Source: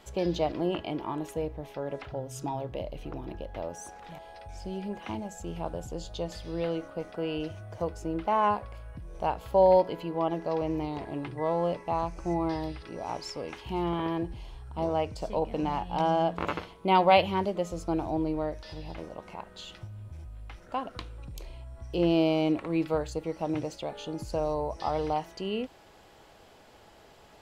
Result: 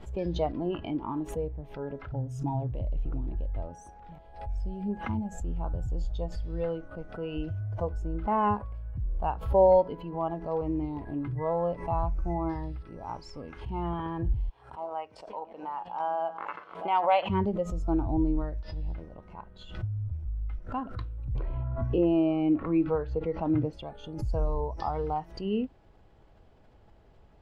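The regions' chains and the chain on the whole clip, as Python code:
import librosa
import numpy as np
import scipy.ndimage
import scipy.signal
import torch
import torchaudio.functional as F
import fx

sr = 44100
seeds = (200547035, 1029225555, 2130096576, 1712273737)

y = fx.chain(x, sr, fx.reverse_delay(ms=345, wet_db=-13.5),
    fx.highpass(hz=640.0, slope=12),
    fx.high_shelf(hz=2800.0, db=-6.5), at=(14.49, 17.3))
y = fx.chain(y, sr, fx.gaussian_blur(sigma=2.1),
    fx.low_shelf(hz=150.0, db=-3.5),
    fx.band_squash(depth_pct=70), at=(21.35, 23.73))
y = fx.riaa(y, sr, side='playback')
y = fx.noise_reduce_blind(y, sr, reduce_db=9)
y = fx.pre_swell(y, sr, db_per_s=110.0)
y = y * librosa.db_to_amplitude(-1.5)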